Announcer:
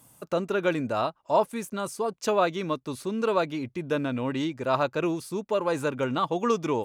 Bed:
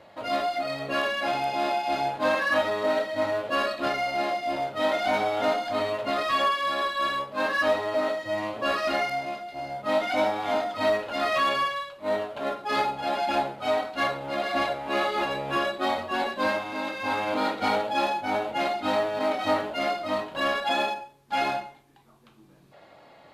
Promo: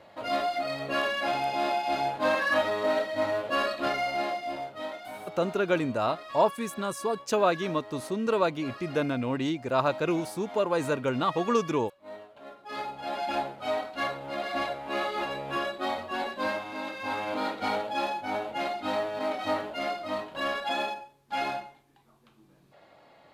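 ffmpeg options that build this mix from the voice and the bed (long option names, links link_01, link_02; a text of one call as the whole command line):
ffmpeg -i stem1.wav -i stem2.wav -filter_complex "[0:a]adelay=5050,volume=-0.5dB[link_01];[1:a]volume=10.5dB,afade=type=out:start_time=4.07:duration=0.95:silence=0.177828,afade=type=in:start_time=12.54:duration=0.72:silence=0.251189[link_02];[link_01][link_02]amix=inputs=2:normalize=0" out.wav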